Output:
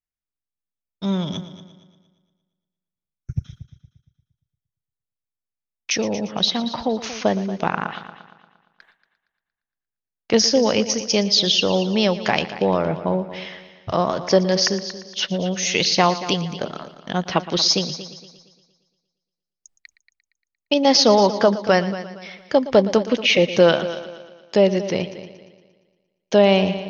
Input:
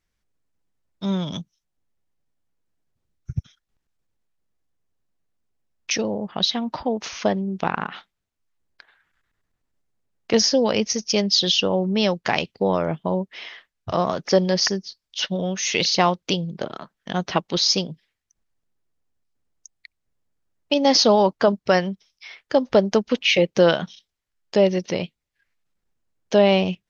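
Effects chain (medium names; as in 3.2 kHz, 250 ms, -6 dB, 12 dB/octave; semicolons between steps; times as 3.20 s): gate with hold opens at -45 dBFS; multi-head delay 116 ms, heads first and second, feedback 42%, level -16 dB; trim +1.5 dB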